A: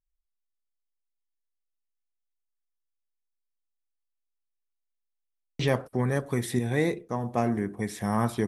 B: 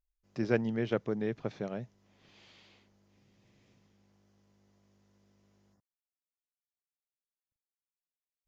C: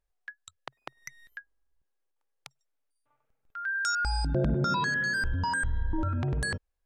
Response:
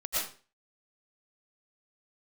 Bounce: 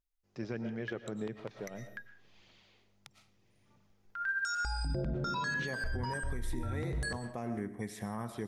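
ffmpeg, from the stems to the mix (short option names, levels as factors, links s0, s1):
-filter_complex "[0:a]volume=0.473,asplit=2[s0][s1];[s1]volume=0.106[s2];[1:a]volume=0.501,asplit=2[s3][s4];[s4]volume=0.168[s5];[2:a]adelay=600,volume=0.794,asplit=2[s6][s7];[s7]volume=0.15[s8];[s3][s6]amix=inputs=2:normalize=0,aphaser=in_gain=1:out_gain=1:delay=2.8:decay=0.36:speed=1.6:type=triangular,alimiter=level_in=1.06:limit=0.0631:level=0:latency=1:release=20,volume=0.944,volume=1[s9];[3:a]atrim=start_sample=2205[s10];[s2][s5][s8]amix=inputs=3:normalize=0[s11];[s11][s10]afir=irnorm=-1:irlink=0[s12];[s0][s9][s12]amix=inputs=3:normalize=0,alimiter=level_in=1.41:limit=0.0631:level=0:latency=1:release=273,volume=0.708"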